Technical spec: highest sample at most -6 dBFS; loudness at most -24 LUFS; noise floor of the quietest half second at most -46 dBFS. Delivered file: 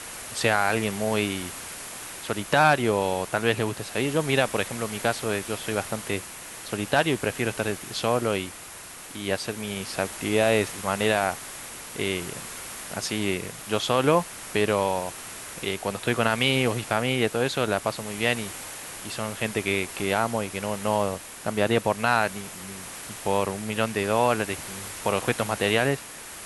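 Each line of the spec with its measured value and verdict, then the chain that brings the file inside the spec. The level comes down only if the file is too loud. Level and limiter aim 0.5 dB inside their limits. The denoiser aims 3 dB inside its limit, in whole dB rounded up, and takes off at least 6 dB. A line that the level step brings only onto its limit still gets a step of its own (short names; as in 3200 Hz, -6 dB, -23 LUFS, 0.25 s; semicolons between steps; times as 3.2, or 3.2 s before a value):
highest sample -5.5 dBFS: fail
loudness -26.0 LUFS: OK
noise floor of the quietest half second -42 dBFS: fail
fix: denoiser 7 dB, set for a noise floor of -42 dBFS; limiter -6.5 dBFS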